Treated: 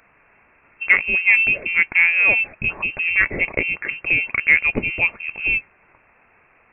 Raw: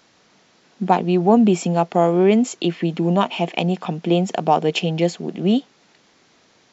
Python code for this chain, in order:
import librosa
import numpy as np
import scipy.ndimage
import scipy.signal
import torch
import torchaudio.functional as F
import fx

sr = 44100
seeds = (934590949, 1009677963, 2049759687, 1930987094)

p1 = fx.highpass(x, sr, hz=620.0, slope=6)
p2 = fx.clip_asym(p1, sr, top_db=-15.5, bottom_db=-10.0)
p3 = p1 + F.gain(torch.from_numpy(p2), -3.0).numpy()
y = fx.freq_invert(p3, sr, carrier_hz=2900)